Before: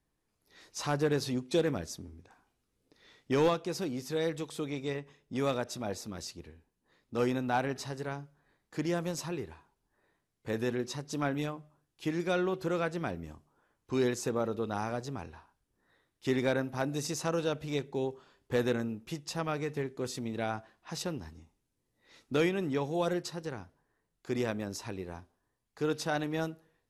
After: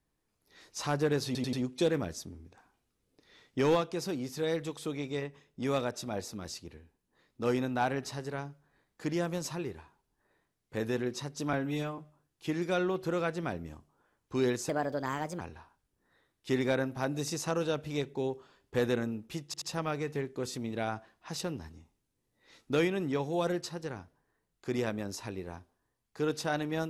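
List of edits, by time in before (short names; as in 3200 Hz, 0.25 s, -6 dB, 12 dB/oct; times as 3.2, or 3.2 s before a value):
1.26 stutter 0.09 s, 4 plays
11.26–11.56 stretch 1.5×
14.27–15.18 speed 127%
19.23 stutter 0.08 s, 3 plays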